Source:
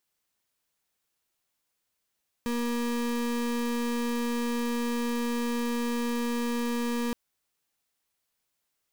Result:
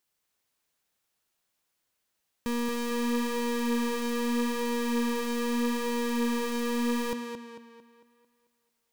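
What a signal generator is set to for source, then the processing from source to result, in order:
pulse 238 Hz, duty 34% -29 dBFS 4.67 s
on a send: tape echo 223 ms, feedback 48%, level -3 dB, low-pass 5.8 kHz

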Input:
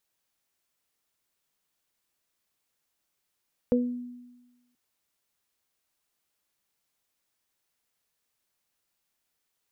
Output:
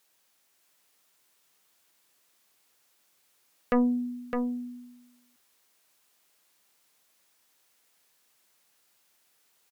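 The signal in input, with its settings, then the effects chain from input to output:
additive tone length 1.03 s, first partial 245 Hz, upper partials 1 dB, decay 1.17 s, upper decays 0.30 s, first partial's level -20 dB
high-pass 260 Hz 6 dB/octave; in parallel at -9.5 dB: sine folder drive 13 dB, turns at -14.5 dBFS; on the sum: delay 610 ms -5.5 dB

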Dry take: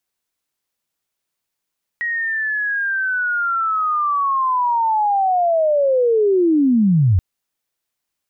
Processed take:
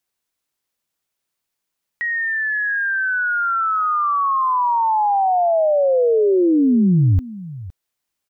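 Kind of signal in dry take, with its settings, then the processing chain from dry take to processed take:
sweep linear 1.9 kHz -> 83 Hz -19 dBFS -> -10.5 dBFS 5.18 s
delay 512 ms -17.5 dB

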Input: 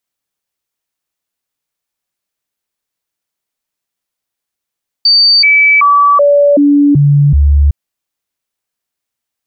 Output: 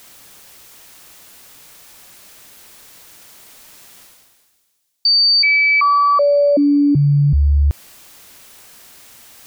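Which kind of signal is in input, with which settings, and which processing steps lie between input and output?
stepped sine 4.6 kHz down, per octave 1, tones 7, 0.38 s, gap 0.00 s -4 dBFS
reverse; upward compressor, threshold -15 dBFS; reverse; feedback echo behind a high-pass 138 ms, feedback 75%, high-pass 4.1 kHz, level -17 dB; peak limiter -9.5 dBFS

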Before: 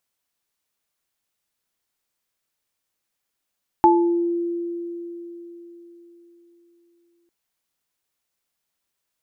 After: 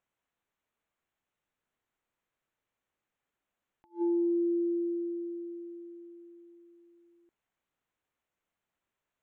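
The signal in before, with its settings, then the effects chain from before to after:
sine partials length 3.45 s, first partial 343 Hz, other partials 866 Hz, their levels 5.5 dB, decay 4.17 s, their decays 0.47 s, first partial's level -13.5 dB
local Wiener filter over 9 samples; compression 6:1, threshold -26 dBFS; attacks held to a fixed rise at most 320 dB/s

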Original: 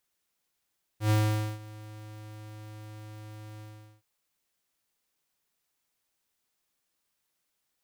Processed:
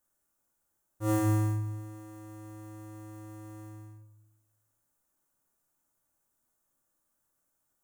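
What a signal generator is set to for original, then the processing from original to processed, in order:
ADSR square 107 Hz, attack 102 ms, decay 482 ms, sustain -22 dB, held 2.60 s, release 420 ms -22.5 dBFS
high-order bell 3.2 kHz -13.5 dB; simulated room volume 870 m³, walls furnished, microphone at 2.5 m

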